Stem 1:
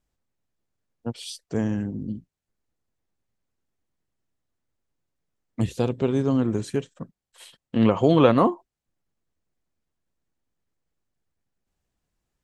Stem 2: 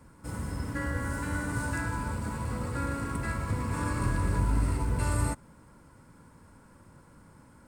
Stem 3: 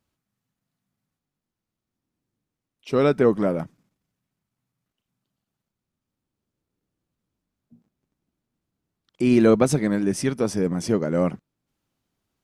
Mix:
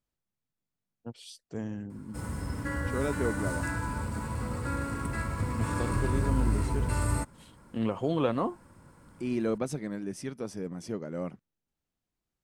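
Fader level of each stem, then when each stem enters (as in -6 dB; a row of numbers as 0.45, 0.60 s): -11.0, -0.5, -13.5 dB; 0.00, 1.90, 0.00 s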